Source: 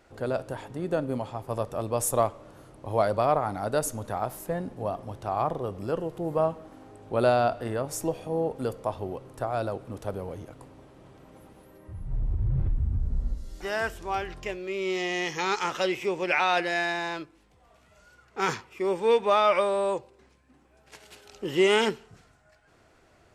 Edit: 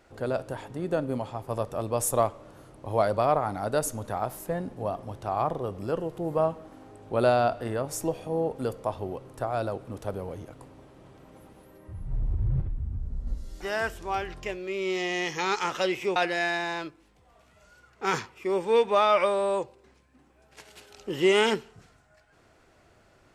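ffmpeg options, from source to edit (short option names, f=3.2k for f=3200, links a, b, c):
-filter_complex "[0:a]asplit=4[a][b][c][d];[a]atrim=end=12.612[e];[b]atrim=start=12.608:end=13.272,asetpts=PTS-STARTPTS,volume=-5.5dB[f];[c]atrim=start=13.268:end=16.162[g];[d]atrim=start=16.508[h];[e][f]acrossfade=d=0.004:c1=hsin:c2=hsin[i];[i][g]acrossfade=d=0.004:c1=hsin:c2=hsin[j];[j][h]acrossfade=d=0.004:c1=hsin:c2=hsin"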